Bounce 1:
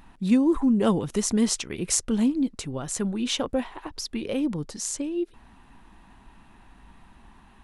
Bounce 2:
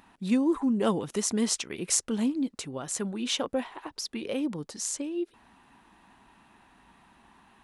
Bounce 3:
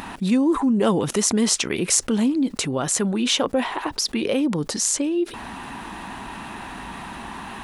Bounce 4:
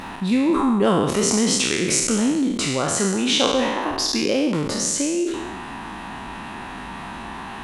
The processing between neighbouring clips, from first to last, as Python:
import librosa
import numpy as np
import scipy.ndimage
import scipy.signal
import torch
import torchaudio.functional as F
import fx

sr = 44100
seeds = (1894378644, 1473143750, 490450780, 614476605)

y1 = fx.highpass(x, sr, hz=270.0, slope=6)
y1 = y1 * 10.0 ** (-1.5 / 20.0)
y2 = fx.env_flatten(y1, sr, amount_pct=50)
y2 = y2 * 10.0 ** (4.5 / 20.0)
y3 = fx.spec_trails(y2, sr, decay_s=1.09)
y3 = fx.high_shelf(y3, sr, hz=9600.0, db=-10.5)
y3 = y3 * 10.0 ** (-1.0 / 20.0)